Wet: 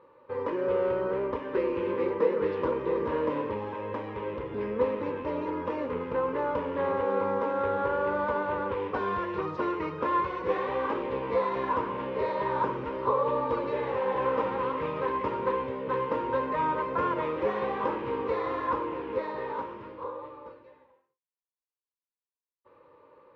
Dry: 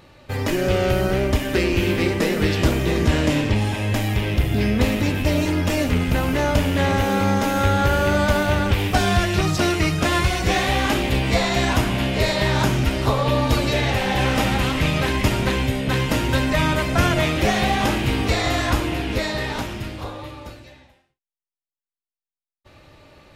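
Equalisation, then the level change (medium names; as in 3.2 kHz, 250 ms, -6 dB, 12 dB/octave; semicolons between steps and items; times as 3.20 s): two resonant band-passes 700 Hz, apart 1 oct; distance through air 190 m; +4.0 dB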